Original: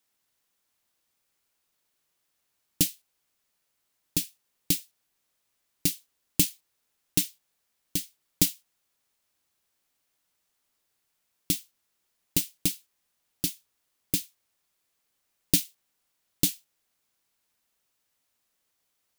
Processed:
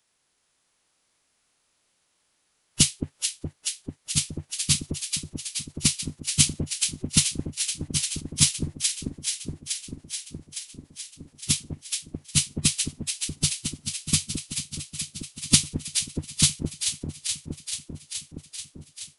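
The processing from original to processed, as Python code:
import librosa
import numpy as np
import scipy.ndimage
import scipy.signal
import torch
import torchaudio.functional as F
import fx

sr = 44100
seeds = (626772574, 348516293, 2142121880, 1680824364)

y = fx.echo_alternate(x, sr, ms=215, hz=1100.0, feedback_pct=86, wet_db=-5)
y = fx.pitch_keep_formants(y, sr, semitones=-12.0)
y = y * 10.0 ** (6.5 / 20.0)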